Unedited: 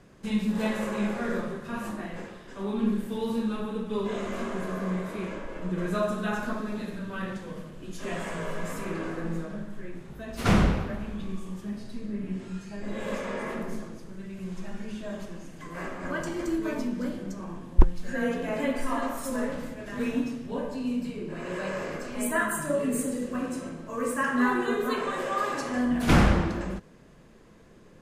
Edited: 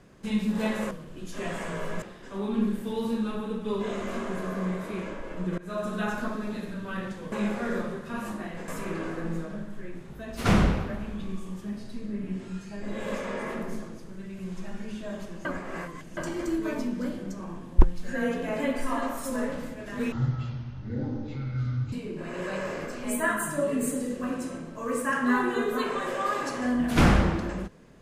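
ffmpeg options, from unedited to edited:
-filter_complex "[0:a]asplit=10[s0][s1][s2][s3][s4][s5][s6][s7][s8][s9];[s0]atrim=end=0.912[s10];[s1]atrim=start=7.568:end=8.682[s11];[s2]atrim=start=2.268:end=5.83,asetpts=PTS-STARTPTS,afade=t=out:st=3.558:d=0.004:c=hsin:silence=0.0794328[s12];[s3]atrim=start=5.83:end=7.572,asetpts=PTS-STARTPTS,afade=t=in:d=0.37:silence=0.0794328[s13];[s4]atrim=start=0.908:end=2.272[s14];[s5]atrim=start=8.678:end=15.452[s15];[s6]atrim=start=15.448:end=16.172,asetpts=PTS-STARTPTS,areverse[s16];[s7]atrim=start=16.168:end=20.124[s17];[s8]atrim=start=20.12:end=21.04,asetpts=PTS-STARTPTS,asetrate=22491,aresample=44100[s18];[s9]atrim=start=21.036[s19];[s10][s11]acrossfade=d=0.004:c1=hsin:c2=hsin[s20];[s12][s13]concat=n=2:v=0:a=1[s21];[s20][s21]acrossfade=d=0.004:c1=hsin:c2=hsin[s22];[s22][s14]acrossfade=d=0.004:c1=hsin:c2=hsin[s23];[s23][s15]acrossfade=d=0.004:c1=hsin:c2=hsin[s24];[s24][s16]acrossfade=d=0.004:c1=hsin:c2=hsin[s25];[s25][s17]acrossfade=d=0.004:c1=hsin:c2=hsin[s26];[s26][s18]acrossfade=d=0.004:c1=hsin:c2=hsin[s27];[s27][s19]acrossfade=d=0.004:c1=hsin:c2=hsin"

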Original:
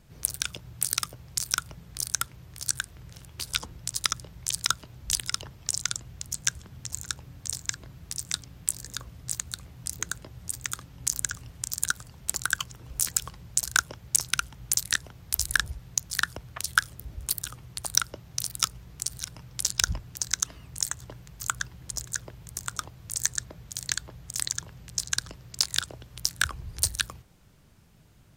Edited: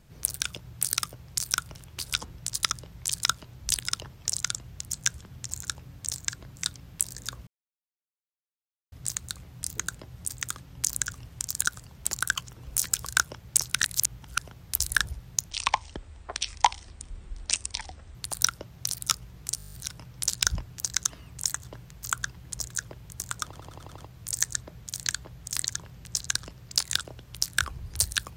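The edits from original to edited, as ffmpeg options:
-filter_complex "[0:a]asplit=23[s0][s1][s2][s3][s4][s5][s6][s7][s8][s9][s10][s11][s12][s13][s14][s15][s16][s17][s18][s19][s20][s21][s22];[s0]atrim=end=1.752[s23];[s1]atrim=start=3.158:end=7.972[s24];[s2]atrim=start=8.238:end=9.15,asetpts=PTS-STARTPTS,afade=t=out:st=0.908:d=0.004:c=hsin,apad=pad_dur=1.45[s25];[s3]atrim=start=9.15:end=13.292,asetpts=PTS-STARTPTS,afade=t=in:d=0.004:c=hsin[s26];[s4]atrim=start=13.648:end=14.382[s27];[s5]atrim=start=14.378:end=14.982,asetpts=PTS-STARTPTS,areverse[s28];[s6]atrim=start=14.978:end=16.094[s29];[s7]atrim=start=16.09:end=17.68,asetpts=PTS-STARTPTS,asetrate=26460,aresample=44100[s30];[s8]atrim=start=17.676:end=19.122[s31];[s9]atrim=start=19.098:end=19.122[s32];[s10]atrim=start=19.098:end=19.122[s33];[s11]atrim=start=19.098:end=19.122[s34];[s12]atrim=start=19.098:end=19.122[s35];[s13]atrim=start=19.098:end=19.122[s36];[s14]atrim=start=19.098:end=19.122[s37];[s15]atrim=start=19.098:end=19.122[s38];[s16]atrim=start=19.098:end=22.902[s39];[s17]atrim=start=22.808:end=22.902[s40];[s18]atrim=start=22.808:end=22.902[s41];[s19]atrim=start=22.808:end=22.902[s42];[s20]atrim=start=22.808:end=22.902[s43];[s21]atrim=start=22.808:end=22.902[s44];[s22]atrim=start=22.808[s45];[s23][s24]acrossfade=d=0.004:c1=hsin:c2=hsin[s46];[s25][s26]concat=n=2:v=0:a=1[s47];[s46][s47]acrossfade=d=0.004:c1=hsin:c2=hsin[s48];[s48][s27]acrossfade=d=0.004:c1=hsin:c2=hsin[s49];[s49][s28]acrossfade=d=0.004:c1=hsin:c2=hsin[s50];[s50][s29]acrossfade=d=0.004:c1=hsin:c2=hsin[s51];[s51][s30]acrossfade=d=0.004:c1=hsin:c2=hsin[s52];[s52][s31]acrossfade=d=0.004:c1=hsin:c2=hsin[s53];[s53][s32]acrossfade=d=0.004:c1=hsin:c2=hsin[s54];[s54][s33]acrossfade=d=0.004:c1=hsin:c2=hsin[s55];[s55][s34]acrossfade=d=0.004:c1=hsin:c2=hsin[s56];[s56][s35]acrossfade=d=0.004:c1=hsin:c2=hsin[s57];[s57][s36]acrossfade=d=0.004:c1=hsin:c2=hsin[s58];[s58][s37]acrossfade=d=0.004:c1=hsin:c2=hsin[s59];[s59][s38]acrossfade=d=0.004:c1=hsin:c2=hsin[s60];[s60][s39]acrossfade=d=0.004:c1=hsin:c2=hsin[s61];[s61][s40]acrossfade=d=0.004:c1=hsin:c2=hsin[s62];[s62][s41]acrossfade=d=0.004:c1=hsin:c2=hsin[s63];[s63][s42]acrossfade=d=0.004:c1=hsin:c2=hsin[s64];[s64][s43]acrossfade=d=0.004:c1=hsin:c2=hsin[s65];[s65][s44]acrossfade=d=0.004:c1=hsin:c2=hsin[s66];[s66][s45]acrossfade=d=0.004:c1=hsin:c2=hsin"

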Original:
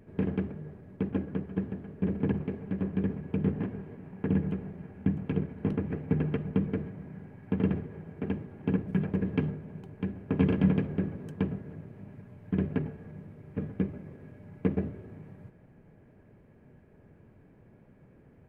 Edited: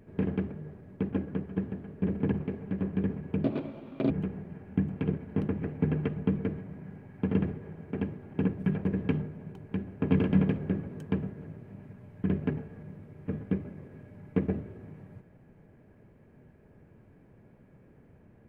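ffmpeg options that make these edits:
-filter_complex "[0:a]asplit=3[s0][s1][s2];[s0]atrim=end=3.444[s3];[s1]atrim=start=3.44:end=4.39,asetpts=PTS-STARTPTS,asetrate=63063,aresample=44100,atrim=end_sample=29297,asetpts=PTS-STARTPTS[s4];[s2]atrim=start=4.386[s5];[s3][s4]acrossfade=d=0.004:c1=hsin:c2=hsin[s6];[s6][s5]acrossfade=d=0.004:c1=hsin:c2=hsin"

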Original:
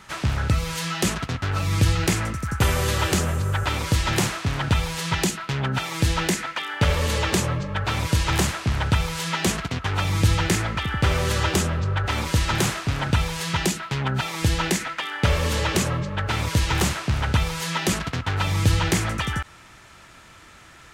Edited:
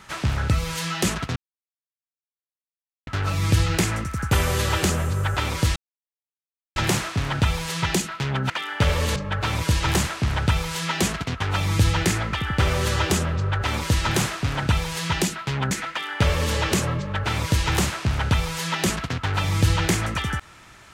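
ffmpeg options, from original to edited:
-filter_complex "[0:a]asplit=6[s0][s1][s2][s3][s4][s5];[s0]atrim=end=1.36,asetpts=PTS-STARTPTS,afade=t=out:st=1.356:d=0.004:c=hsin,apad=pad_dur=1.71[s6];[s1]atrim=start=1.36:end=4.05,asetpts=PTS-STARTPTS,afade=t=in:d=0.004:c=hsin,afade=t=out:st=2.686:d=0.004:c=hsin,apad=pad_dur=1[s7];[s2]atrim=start=4.05:end=5.792,asetpts=PTS-STARTPTS,afade=t=in:d=0.004:c=hsin[s8];[s3]atrim=start=6.508:end=7.172[s9];[s4]atrim=start=7.598:end=14.152[s10];[s5]atrim=start=14.738[s11];[s6][s7][s8]concat=n=3:v=0:a=1[s12];[s12][s9]acrossfade=d=0.004:c1=hsin:c2=hsin[s13];[s13][s10]acrossfade=d=0.004:c1=hsin:c2=hsin[s14];[s14][s11]acrossfade=d=0.004:c1=hsin:c2=hsin"

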